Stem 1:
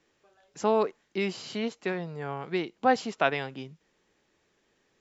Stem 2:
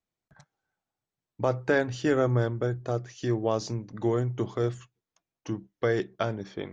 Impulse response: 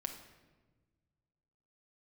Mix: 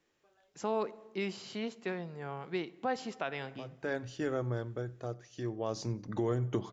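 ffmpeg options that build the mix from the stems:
-filter_complex "[0:a]volume=-8.5dB,asplit=2[link_01][link_02];[link_02]volume=-8.5dB[link_03];[1:a]adelay=2150,volume=-0.5dB,afade=type=in:start_time=3.72:duration=0.24:silence=0.281838,afade=type=in:start_time=5.63:duration=0.5:silence=0.316228,asplit=3[link_04][link_05][link_06];[link_05]volume=-20dB[link_07];[link_06]volume=-23dB[link_08];[2:a]atrim=start_sample=2205[link_09];[link_03][link_07]amix=inputs=2:normalize=0[link_10];[link_10][link_09]afir=irnorm=-1:irlink=0[link_11];[link_08]aecho=0:1:94|188|282|376:1|0.29|0.0841|0.0244[link_12];[link_01][link_04][link_11][link_12]amix=inputs=4:normalize=0,alimiter=limit=-22dB:level=0:latency=1:release=174"

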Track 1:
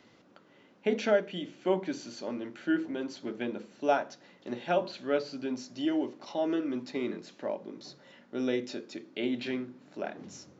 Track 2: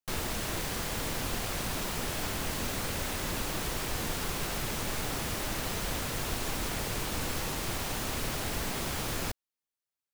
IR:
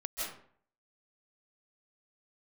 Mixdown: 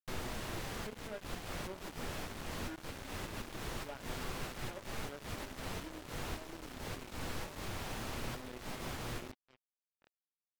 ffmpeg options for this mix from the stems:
-filter_complex "[0:a]equalizer=frequency=710:width_type=o:width=0.24:gain=-8.5,volume=-20dB,asplit=2[link_01][link_02];[1:a]flanger=delay=7.9:depth=4.6:regen=78:speed=0.23:shape=sinusoidal,volume=-2dB[link_03];[link_02]apad=whole_len=446966[link_04];[link_03][link_04]sidechaincompress=threshold=-60dB:ratio=5:attack=46:release=109[link_05];[link_01][link_05]amix=inputs=2:normalize=0,acrusher=bits=6:mix=0:aa=0.5,aemphasis=mode=reproduction:type=cd"

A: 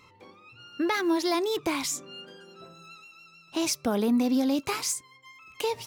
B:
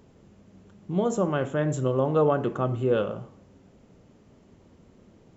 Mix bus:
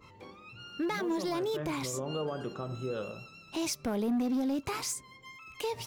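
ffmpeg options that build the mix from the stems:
ffmpeg -i stem1.wav -i stem2.wav -filter_complex "[0:a]lowshelf=frequency=84:gain=9,asoftclip=type=hard:threshold=-20.5dB,adynamicequalizer=threshold=0.00631:dfrequency=1900:dqfactor=0.7:tfrequency=1900:tqfactor=0.7:attack=5:release=100:ratio=0.375:range=2.5:mode=cutabove:tftype=highshelf,volume=1dB[link_01];[1:a]volume=-10dB[link_02];[link_01][link_02]amix=inputs=2:normalize=0,alimiter=level_in=2dB:limit=-24dB:level=0:latency=1:release=84,volume=-2dB" out.wav

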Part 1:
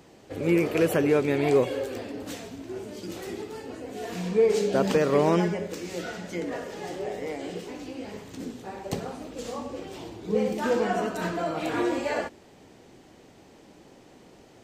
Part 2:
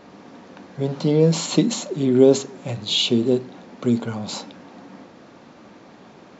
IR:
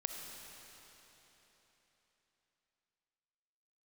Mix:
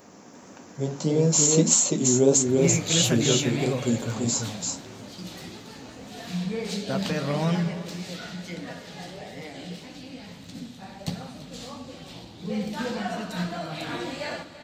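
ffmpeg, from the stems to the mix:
-filter_complex "[0:a]equalizer=frequency=160:width_type=o:width=0.67:gain=8,equalizer=frequency=400:width_type=o:width=0.67:gain=-12,equalizer=frequency=1000:width_type=o:width=0.67:gain=-3,equalizer=frequency=4000:width_type=o:width=0.67:gain=9,adelay=2150,volume=-1.5dB,asplit=3[link_01][link_02][link_03];[link_02]volume=-6.5dB[link_04];[link_03]volume=-12.5dB[link_05];[1:a]asubboost=boost=3:cutoff=130,aexciter=amount=8.5:drive=3.9:freq=5800,volume=-1dB,asplit=2[link_06][link_07];[link_07]volume=-3dB[link_08];[2:a]atrim=start_sample=2205[link_09];[link_04][link_09]afir=irnorm=-1:irlink=0[link_10];[link_05][link_08]amix=inputs=2:normalize=0,aecho=0:1:339:1[link_11];[link_01][link_06][link_10][link_11]amix=inputs=4:normalize=0,flanger=delay=7.4:depth=9.6:regen=-40:speed=1.6:shape=sinusoidal"

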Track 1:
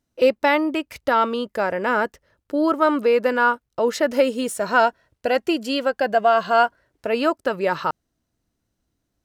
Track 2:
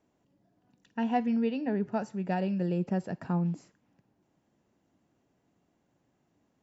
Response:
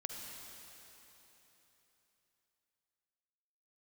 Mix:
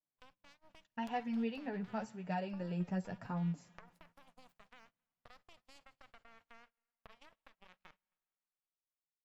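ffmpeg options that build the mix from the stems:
-filter_complex "[0:a]alimiter=limit=-16.5dB:level=0:latency=1:release=170,acompressor=threshold=-32dB:ratio=2.5,aeval=exprs='0.119*(cos(1*acos(clip(val(0)/0.119,-1,1)))-cos(1*PI/2))+0.0422*(cos(2*acos(clip(val(0)/0.119,-1,1)))-cos(2*PI/2))+0.0422*(cos(3*acos(clip(val(0)/0.119,-1,1)))-cos(3*PI/2))+0.00266*(cos(4*acos(clip(val(0)/0.119,-1,1)))-cos(4*PI/2))':channel_layout=same,volume=-19.5dB,asplit=3[link_01][link_02][link_03];[link_02]volume=-7dB[link_04];[link_03]volume=-14.5dB[link_05];[1:a]flanger=delay=6.3:depth=5.5:regen=19:speed=0.86:shape=triangular,volume=-1.5dB,asplit=2[link_06][link_07];[link_07]volume=-20dB[link_08];[2:a]atrim=start_sample=2205[link_09];[link_04][link_08]amix=inputs=2:normalize=0[link_10];[link_10][link_09]afir=irnorm=-1:irlink=0[link_11];[link_05]aecho=0:1:269:1[link_12];[link_01][link_06][link_11][link_12]amix=inputs=4:normalize=0,agate=range=-21dB:threshold=-60dB:ratio=16:detection=peak,equalizer=frequency=330:width=1:gain=-9.5"

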